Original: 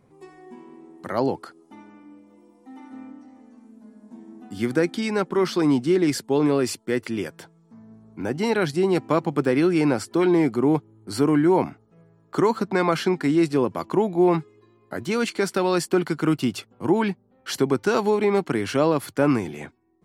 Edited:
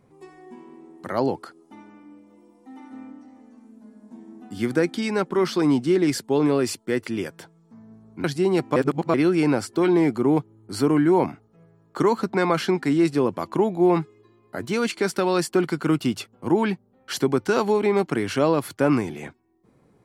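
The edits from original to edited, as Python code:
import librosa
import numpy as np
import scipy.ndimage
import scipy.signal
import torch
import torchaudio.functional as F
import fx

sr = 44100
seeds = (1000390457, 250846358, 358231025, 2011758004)

y = fx.edit(x, sr, fx.cut(start_s=8.24, length_s=0.38),
    fx.reverse_span(start_s=9.14, length_s=0.38), tone=tone)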